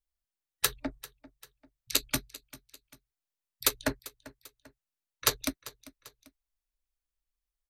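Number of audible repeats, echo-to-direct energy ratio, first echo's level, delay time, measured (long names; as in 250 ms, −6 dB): 2, −18.0 dB, −19.0 dB, 394 ms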